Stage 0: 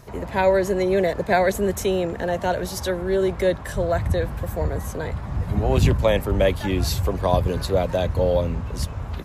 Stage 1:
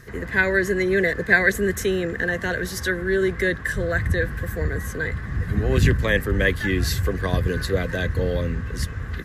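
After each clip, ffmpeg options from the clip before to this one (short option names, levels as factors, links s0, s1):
-af "superequalizer=8b=0.316:9b=0.282:11b=3.55"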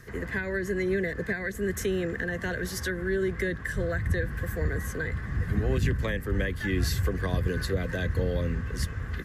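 -filter_complex "[0:a]bandreject=f=3900:w=21,alimiter=limit=0.282:level=0:latency=1:release=335,acrossover=split=320[s0][s1];[s1]acompressor=threshold=0.0501:ratio=6[s2];[s0][s2]amix=inputs=2:normalize=0,volume=0.668"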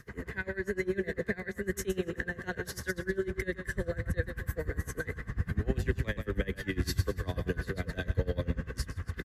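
-af "aecho=1:1:128|256|384|512|640:0.355|0.149|0.0626|0.0263|0.011,aeval=exprs='val(0)*pow(10,-22*(0.5-0.5*cos(2*PI*10*n/s))/20)':c=same"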